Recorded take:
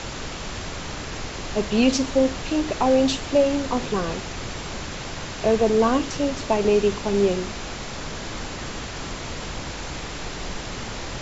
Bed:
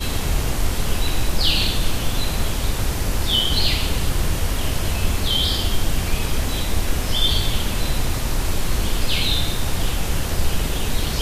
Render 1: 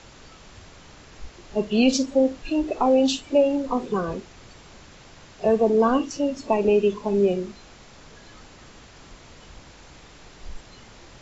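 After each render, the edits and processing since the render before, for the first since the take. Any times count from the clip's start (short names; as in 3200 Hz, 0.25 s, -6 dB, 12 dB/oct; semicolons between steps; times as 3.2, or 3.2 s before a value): noise print and reduce 15 dB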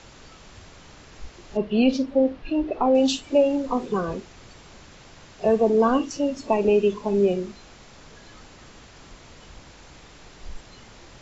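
1.57–2.95 air absorption 230 m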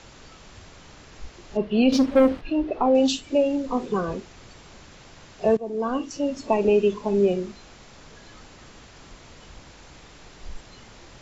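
1.92–2.41 sample leveller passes 2; 3.08–3.74 bell 860 Hz -4.5 dB 1.4 oct; 5.57–6.38 fade in, from -17 dB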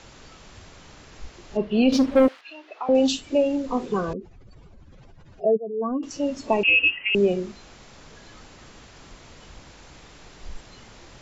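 2.28–2.89 HPF 1300 Hz; 4.13–6.03 spectral contrast raised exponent 2.2; 6.63–7.15 inverted band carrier 3000 Hz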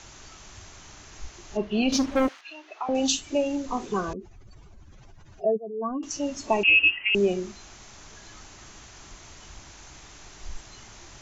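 thirty-one-band EQ 160 Hz -7 dB, 250 Hz -6 dB, 500 Hz -10 dB, 6300 Hz +9 dB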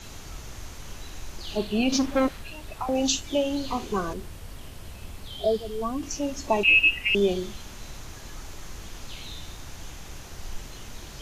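add bed -20 dB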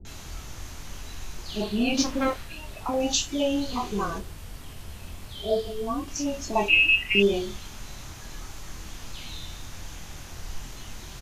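doubler 25 ms -7 dB; bands offset in time lows, highs 50 ms, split 450 Hz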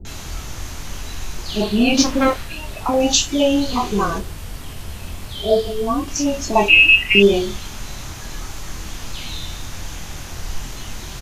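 gain +9 dB; limiter -1 dBFS, peak gain reduction 1.5 dB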